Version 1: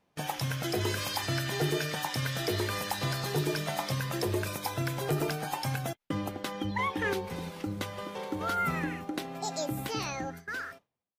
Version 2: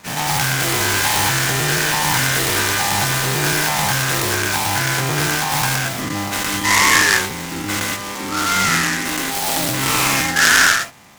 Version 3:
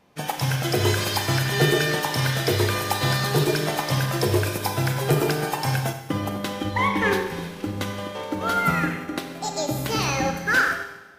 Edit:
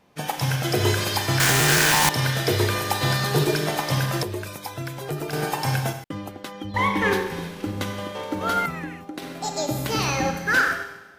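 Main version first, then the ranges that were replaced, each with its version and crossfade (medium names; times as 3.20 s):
3
1.40–2.09 s: from 2
4.23–5.33 s: from 1
6.04–6.74 s: from 1
8.66–9.22 s: from 1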